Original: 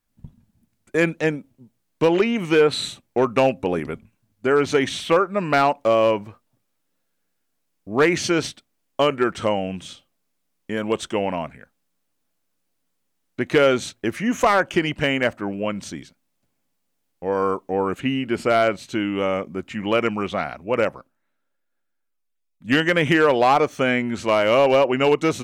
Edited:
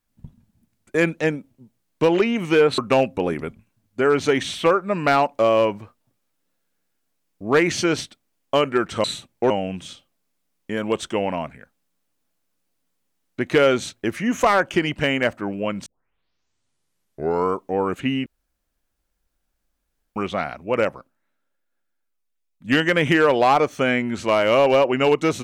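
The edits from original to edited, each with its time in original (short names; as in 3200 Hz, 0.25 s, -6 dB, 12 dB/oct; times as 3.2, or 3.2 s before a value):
2.78–3.24 move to 9.5
15.86 tape start 1.68 s
18.26–20.16 room tone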